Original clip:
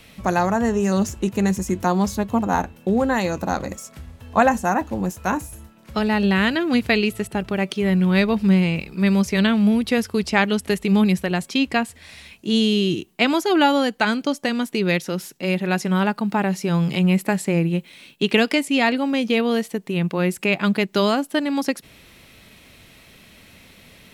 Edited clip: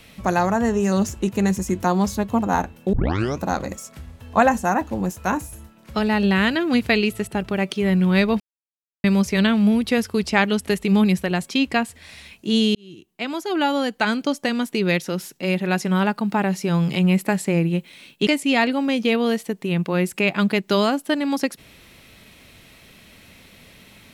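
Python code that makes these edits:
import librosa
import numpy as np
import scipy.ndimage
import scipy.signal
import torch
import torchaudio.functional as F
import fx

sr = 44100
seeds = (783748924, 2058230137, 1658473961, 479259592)

y = fx.edit(x, sr, fx.tape_start(start_s=2.93, length_s=0.46),
    fx.silence(start_s=8.4, length_s=0.64),
    fx.fade_in_span(start_s=12.75, length_s=1.46),
    fx.cut(start_s=18.27, length_s=0.25), tone=tone)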